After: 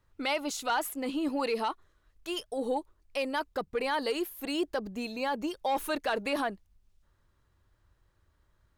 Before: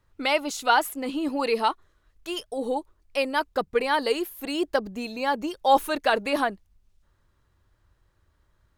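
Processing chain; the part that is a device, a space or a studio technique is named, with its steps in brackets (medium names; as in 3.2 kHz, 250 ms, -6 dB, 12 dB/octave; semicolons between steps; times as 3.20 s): soft clipper into limiter (saturation -12 dBFS, distortion -19 dB; peak limiter -19 dBFS, peak gain reduction 6.5 dB); trim -3 dB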